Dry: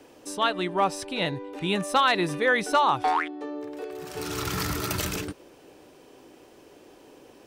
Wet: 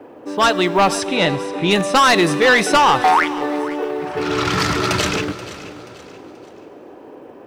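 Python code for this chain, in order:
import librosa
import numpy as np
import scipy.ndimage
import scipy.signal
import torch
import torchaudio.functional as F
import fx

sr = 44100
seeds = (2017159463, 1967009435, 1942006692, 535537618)

p1 = fx.highpass(x, sr, hz=180.0, slope=6)
p2 = fx.env_lowpass(p1, sr, base_hz=1200.0, full_db=-21.5)
p3 = fx.fold_sine(p2, sr, drive_db=10, ceiling_db=-9.5)
p4 = p2 + F.gain(torch.from_numpy(p3), -6.0).numpy()
p5 = fx.quant_companded(p4, sr, bits=8)
p6 = fx.air_absorb(p5, sr, metres=76.0, at=(1.06, 1.71))
p7 = fx.echo_feedback(p6, sr, ms=481, feedback_pct=38, wet_db=-16.0)
p8 = fx.rev_plate(p7, sr, seeds[0], rt60_s=3.4, hf_ratio=1.0, predelay_ms=0, drr_db=16.5)
y = F.gain(torch.from_numpy(p8), 2.5).numpy()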